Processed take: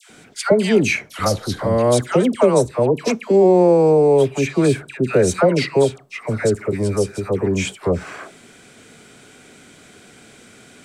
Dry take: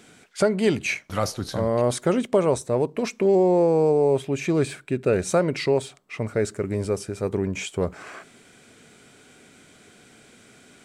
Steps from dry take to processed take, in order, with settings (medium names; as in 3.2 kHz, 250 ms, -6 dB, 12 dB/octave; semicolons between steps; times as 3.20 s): phase dispersion lows, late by 99 ms, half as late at 1.1 kHz; trim +6 dB